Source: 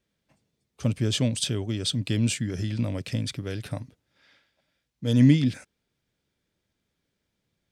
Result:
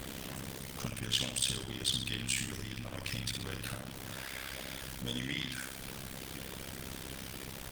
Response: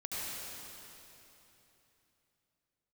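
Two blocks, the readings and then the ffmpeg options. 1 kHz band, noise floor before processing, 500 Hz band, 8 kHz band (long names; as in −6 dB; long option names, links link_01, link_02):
+1.5 dB, −80 dBFS, −10.5 dB, −1.5 dB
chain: -filter_complex "[0:a]aeval=exprs='val(0)+0.5*0.0224*sgn(val(0))':channel_layout=same,equalizer=frequency=3100:width_type=o:width=0.21:gain=3,aecho=1:1:63|126|189|252|315:0.562|0.247|0.109|0.0479|0.0211,acrossover=split=830[link_01][link_02];[link_01]acompressor=threshold=-35dB:ratio=10[link_03];[link_03][link_02]amix=inputs=2:normalize=0,aeval=exprs='val(0)+0.00282*(sin(2*PI*60*n/s)+sin(2*PI*2*60*n/s)/2+sin(2*PI*3*60*n/s)/3+sin(2*PI*4*60*n/s)/4+sin(2*PI*5*60*n/s)/5)':channel_layout=same,asplit=2[link_04][link_05];[link_05]firequalizer=gain_entry='entry(220,0);entry(350,-9);entry(1200,-4);entry(2700,2);entry(3900,-11)':delay=0.05:min_phase=1[link_06];[1:a]atrim=start_sample=2205,asetrate=31752,aresample=44100,lowpass=5700[link_07];[link_06][link_07]afir=irnorm=-1:irlink=0,volume=-26dB[link_08];[link_04][link_08]amix=inputs=2:normalize=0,tremolo=f=66:d=0.857" -ar 48000 -c:a libopus -b:a 24k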